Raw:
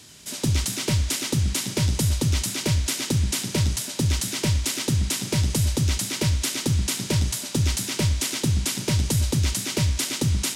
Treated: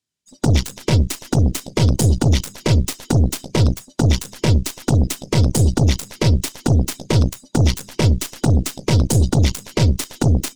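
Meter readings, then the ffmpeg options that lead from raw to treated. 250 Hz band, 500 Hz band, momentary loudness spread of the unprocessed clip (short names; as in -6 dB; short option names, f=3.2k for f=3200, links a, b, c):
+7.5 dB, +8.5 dB, 2 LU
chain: -af "afftdn=nr=34:nf=-29,aeval=exprs='0.237*(cos(1*acos(clip(val(0)/0.237,-1,1)))-cos(1*PI/2))+0.0422*(cos(3*acos(clip(val(0)/0.237,-1,1)))-cos(3*PI/2))+0.0376*(cos(5*acos(clip(val(0)/0.237,-1,1)))-cos(5*PI/2))+0.015*(cos(6*acos(clip(val(0)/0.237,-1,1)))-cos(6*PI/2))+0.0531*(cos(7*acos(clip(val(0)/0.237,-1,1)))-cos(7*PI/2))':c=same,volume=8dB"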